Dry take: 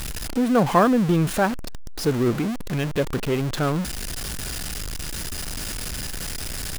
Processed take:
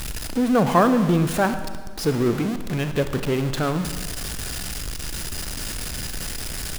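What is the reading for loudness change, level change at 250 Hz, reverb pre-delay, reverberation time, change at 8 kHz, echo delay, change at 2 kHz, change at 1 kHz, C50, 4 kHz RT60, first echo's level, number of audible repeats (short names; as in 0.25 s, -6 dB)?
+0.5 dB, +0.5 dB, 32 ms, 1.5 s, +0.5 dB, none, +0.5 dB, +0.5 dB, 10.0 dB, 1.3 s, none, none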